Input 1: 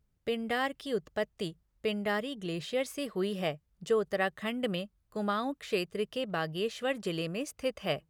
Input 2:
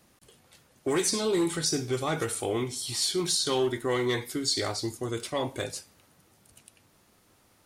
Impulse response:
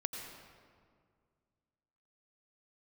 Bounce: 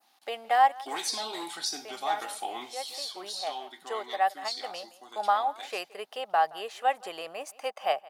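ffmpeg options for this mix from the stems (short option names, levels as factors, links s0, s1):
-filter_complex "[0:a]volume=1.06,asplit=2[s0][s1];[s1]volume=0.0794[s2];[1:a]equalizer=f=125:t=o:w=1:g=-6,equalizer=f=250:t=o:w=1:g=9,equalizer=f=500:t=o:w=1:g=-12,equalizer=f=1000:t=o:w=1:g=-6,equalizer=f=2000:t=o:w=1:g=-3,equalizer=f=4000:t=o:w=1:g=8,equalizer=f=8000:t=o:w=1:g=-8,volume=0.794,afade=t=out:st=2.67:d=0.41:silence=0.398107,asplit=3[s3][s4][s5];[s4]volume=0.1[s6];[s5]apad=whole_len=357133[s7];[s0][s7]sidechaincompress=threshold=0.0112:ratio=8:attack=10:release=433[s8];[2:a]atrim=start_sample=2205[s9];[s6][s9]afir=irnorm=-1:irlink=0[s10];[s2]aecho=0:1:171:1[s11];[s8][s3][s10][s11]amix=inputs=4:normalize=0,adynamicequalizer=threshold=0.00501:dfrequency=3700:dqfactor=0.78:tfrequency=3700:tqfactor=0.78:attack=5:release=100:ratio=0.375:range=2:mode=cutabove:tftype=bell,highpass=f=790:t=q:w=6.6"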